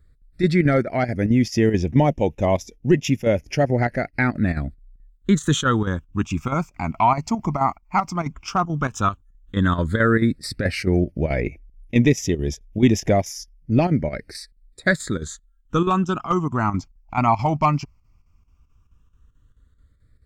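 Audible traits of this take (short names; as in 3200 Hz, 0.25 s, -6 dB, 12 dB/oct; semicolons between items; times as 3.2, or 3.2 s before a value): chopped level 4.6 Hz, depth 60%, duty 80%; phasing stages 8, 0.1 Hz, lowest notch 490–1300 Hz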